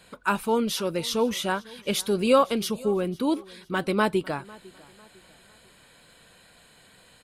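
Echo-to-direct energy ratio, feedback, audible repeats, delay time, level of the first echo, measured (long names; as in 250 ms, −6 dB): −22.5 dB, 39%, 2, 501 ms, −23.0 dB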